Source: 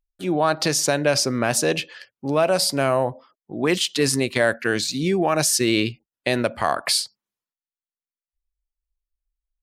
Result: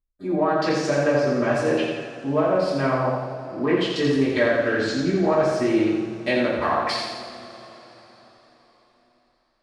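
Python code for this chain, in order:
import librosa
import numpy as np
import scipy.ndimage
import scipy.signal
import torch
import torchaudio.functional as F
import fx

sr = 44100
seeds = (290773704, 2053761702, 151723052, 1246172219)

p1 = fx.wiener(x, sr, points=15)
p2 = fx.env_lowpass_down(p1, sr, base_hz=1400.0, full_db=-15.5)
p3 = fx.hum_notches(p2, sr, base_hz=50, count=3)
p4 = p3 + fx.echo_feedback(p3, sr, ms=85, feedback_pct=55, wet_db=-5.0, dry=0)
p5 = fx.rev_double_slope(p4, sr, seeds[0], early_s=0.49, late_s=4.4, knee_db=-20, drr_db=-8.5)
y = F.gain(torch.from_numpy(p5), -8.5).numpy()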